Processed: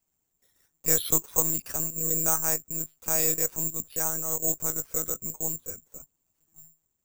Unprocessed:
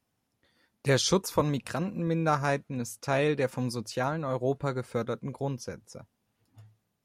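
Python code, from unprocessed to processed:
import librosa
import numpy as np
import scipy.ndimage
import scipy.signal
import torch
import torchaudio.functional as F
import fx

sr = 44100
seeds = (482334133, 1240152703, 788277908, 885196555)

y = fx.lpc_monotone(x, sr, seeds[0], pitch_hz=160.0, order=16)
y = (np.kron(y[::6], np.eye(6)[0]) * 6)[:len(y)]
y = y * librosa.db_to_amplitude(-6.5)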